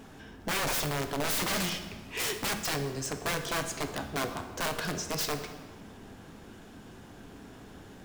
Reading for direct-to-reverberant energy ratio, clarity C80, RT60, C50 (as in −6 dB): 6.0 dB, 10.5 dB, 1.6 s, 9.0 dB